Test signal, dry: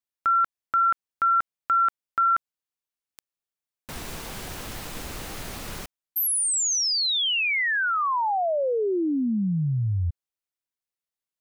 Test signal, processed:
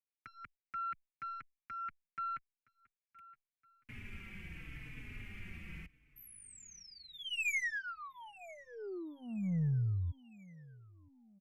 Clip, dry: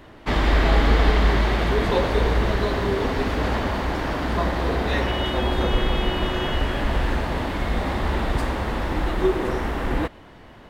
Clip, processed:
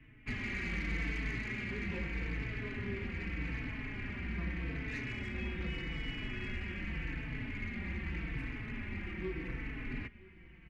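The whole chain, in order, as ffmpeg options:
ffmpeg -i in.wav -filter_complex "[0:a]firequalizer=gain_entry='entry(160,0);entry(580,-22);entry(920,-20);entry(2300,6);entry(3800,-23)':delay=0.05:min_phase=1,acrossover=split=120[link_01][link_02];[link_01]acompressor=threshold=-35dB:ratio=6:attack=89:release=131[link_03];[link_02]asoftclip=type=tanh:threshold=-24dB[link_04];[link_03][link_04]amix=inputs=2:normalize=0,aeval=exprs='0.112*(cos(1*acos(clip(val(0)/0.112,-1,1)))-cos(1*PI/2))+0.000794*(cos(4*acos(clip(val(0)/0.112,-1,1)))-cos(4*PI/2))+0.00112*(cos(8*acos(clip(val(0)/0.112,-1,1)))-cos(8*PI/2))':channel_layout=same,aecho=1:1:968|1936|2904:0.0794|0.0365|0.0168,aresample=32000,aresample=44100,asplit=2[link_05][link_06];[link_06]adelay=4.1,afreqshift=-0.83[link_07];[link_05][link_07]amix=inputs=2:normalize=1,volume=-5.5dB" out.wav

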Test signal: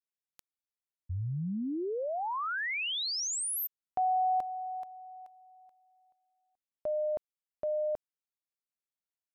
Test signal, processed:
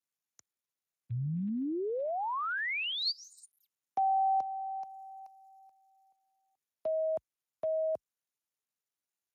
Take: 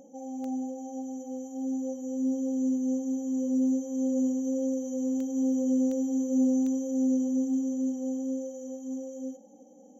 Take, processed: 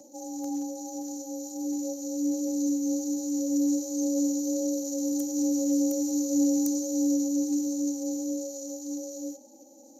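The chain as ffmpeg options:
ffmpeg -i in.wav -af "aexciter=amount=14.1:drive=3.2:freq=5400,afreqshift=28" -ar 32000 -c:a libspeex -b:a 28k out.spx

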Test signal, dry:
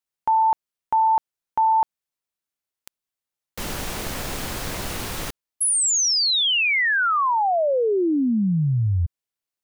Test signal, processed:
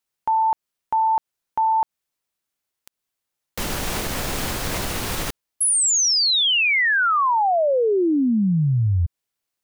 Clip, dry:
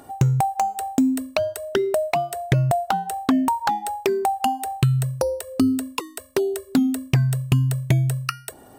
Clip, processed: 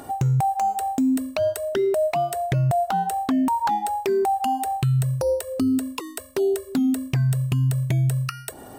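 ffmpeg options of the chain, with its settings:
ffmpeg -i in.wav -af "alimiter=limit=-21.5dB:level=0:latency=1:release=117,volume=6dB" out.wav

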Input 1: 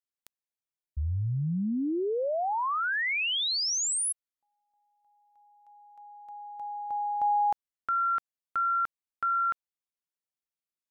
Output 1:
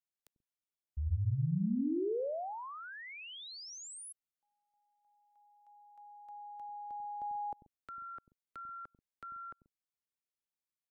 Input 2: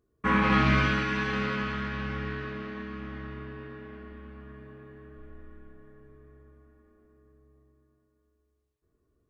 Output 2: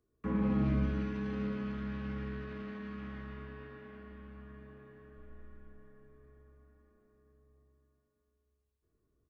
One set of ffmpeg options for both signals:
ffmpeg -i in.wav -filter_complex "[0:a]acrossover=split=330|610[link_01][link_02][link_03];[link_01]aecho=1:1:93.29|134.1:0.794|0.447[link_04];[link_03]acompressor=threshold=-41dB:ratio=10:attack=0.26:release=93:knee=1:detection=peak[link_05];[link_04][link_02][link_05]amix=inputs=3:normalize=0,volume=-5.5dB" out.wav

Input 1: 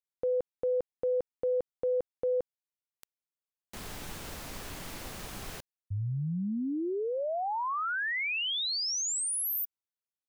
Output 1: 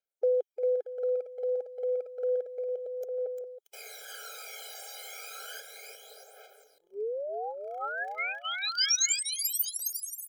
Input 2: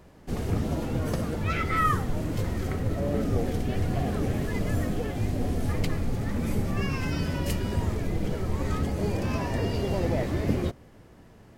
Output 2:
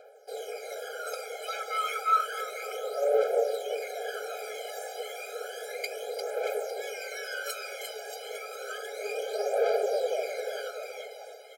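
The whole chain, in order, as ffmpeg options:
ffmpeg -i in.wav -af "aecho=1:1:350|630|854|1033|1177:0.631|0.398|0.251|0.158|0.1,aphaser=in_gain=1:out_gain=1:delay=1.1:decay=0.66:speed=0.31:type=triangular,afftfilt=real='re*eq(mod(floor(b*sr/1024/420),2),1)':imag='im*eq(mod(floor(b*sr/1024/420),2),1)':win_size=1024:overlap=0.75" out.wav

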